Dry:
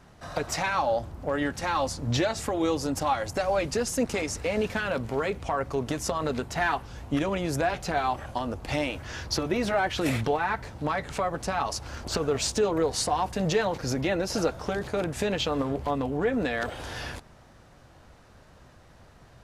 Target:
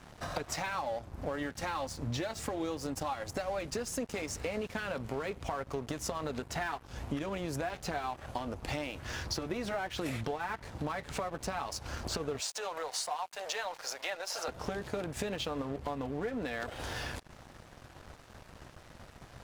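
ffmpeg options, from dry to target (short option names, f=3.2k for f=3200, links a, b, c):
-filter_complex "[0:a]asettb=1/sr,asplit=3[a][b][c];[a]atrim=end=12.404[d];[b]atrim=start=12.4:end=14.48,asetpts=PTS-STARTPTS,afade=t=in:d=0.004:c=qsin,afade=t=out:st=2.076:d=0.004:c=qsin,highpass=f=630:w=0.5412,highpass=f=630:w=1.3066[e];[c]atrim=start=14.476[f];[d][e]acrossfade=d=0.004:c1=hsin:c2=qsin[g];[g][f]acrossfade=d=0.004:c1=qsin:c2=hsin,acompressor=threshold=-42dB:ratio=4,aeval=exprs='sgn(val(0))*max(abs(val(0))-0.00168,0)':c=same,volume=7dB"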